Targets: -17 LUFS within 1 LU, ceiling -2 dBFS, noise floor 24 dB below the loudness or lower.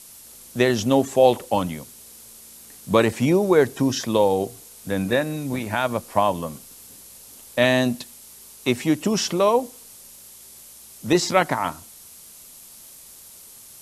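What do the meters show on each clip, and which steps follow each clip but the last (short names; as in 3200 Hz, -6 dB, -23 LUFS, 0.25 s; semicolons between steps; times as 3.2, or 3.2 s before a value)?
noise floor -45 dBFS; noise floor target -46 dBFS; loudness -21.5 LUFS; peak -3.0 dBFS; loudness target -17.0 LUFS
-> noise print and reduce 6 dB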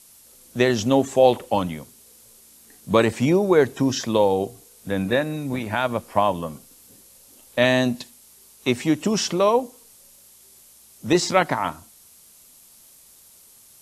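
noise floor -51 dBFS; loudness -21.5 LUFS; peak -3.0 dBFS; loudness target -17.0 LUFS
-> gain +4.5 dB; limiter -2 dBFS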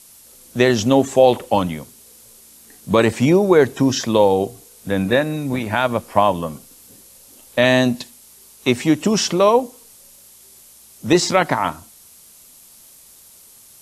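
loudness -17.5 LUFS; peak -2.0 dBFS; noise floor -47 dBFS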